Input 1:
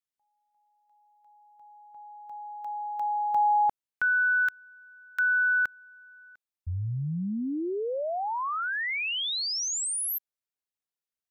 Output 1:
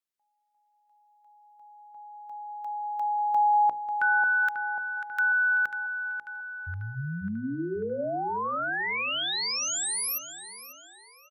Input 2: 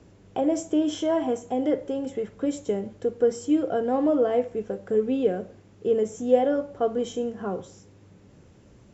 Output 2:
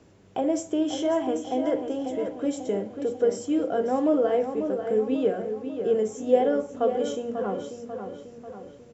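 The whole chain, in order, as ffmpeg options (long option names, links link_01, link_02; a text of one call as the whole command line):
ffmpeg -i in.wav -filter_complex "[0:a]lowshelf=frequency=85:gain=-9.5,bandreject=frequency=60:width_type=h:width=6,bandreject=frequency=120:width_type=h:width=6,bandreject=frequency=180:width_type=h:width=6,bandreject=frequency=240:width_type=h:width=6,bandreject=frequency=300:width_type=h:width=6,bandreject=frequency=360:width_type=h:width=6,bandreject=frequency=420:width_type=h:width=6,bandreject=frequency=480:width_type=h:width=6,bandreject=frequency=540:width_type=h:width=6,asplit=2[link_01][link_02];[link_02]adelay=542,lowpass=frequency=4100:poles=1,volume=-8dB,asplit=2[link_03][link_04];[link_04]adelay=542,lowpass=frequency=4100:poles=1,volume=0.53,asplit=2[link_05][link_06];[link_06]adelay=542,lowpass=frequency=4100:poles=1,volume=0.53,asplit=2[link_07][link_08];[link_08]adelay=542,lowpass=frequency=4100:poles=1,volume=0.53,asplit=2[link_09][link_10];[link_10]adelay=542,lowpass=frequency=4100:poles=1,volume=0.53,asplit=2[link_11][link_12];[link_12]adelay=542,lowpass=frequency=4100:poles=1,volume=0.53[link_13];[link_01][link_03][link_05][link_07][link_09][link_11][link_13]amix=inputs=7:normalize=0" out.wav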